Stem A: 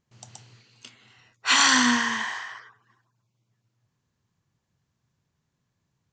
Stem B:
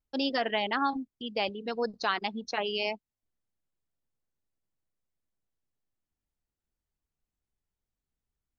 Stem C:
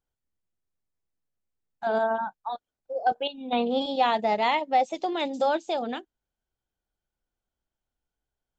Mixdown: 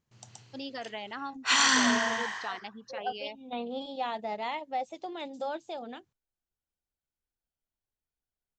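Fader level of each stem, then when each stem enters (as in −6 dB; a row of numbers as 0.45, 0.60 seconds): −4.5, −10.0, −10.5 decibels; 0.00, 0.40, 0.00 seconds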